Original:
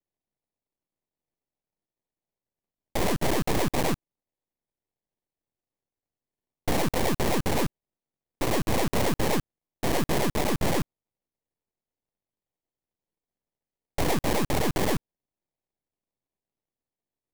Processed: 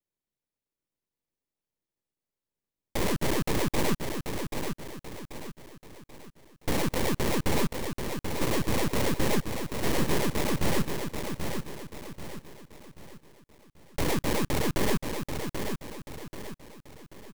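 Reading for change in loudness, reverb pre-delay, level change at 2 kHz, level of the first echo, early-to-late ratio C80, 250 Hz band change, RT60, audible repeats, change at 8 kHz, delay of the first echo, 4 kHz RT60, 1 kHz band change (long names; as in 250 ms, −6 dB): −3.0 dB, no reverb audible, −0.5 dB, −6.0 dB, no reverb audible, −0.5 dB, no reverb audible, 4, −0.5 dB, 785 ms, no reverb audible, −3.0 dB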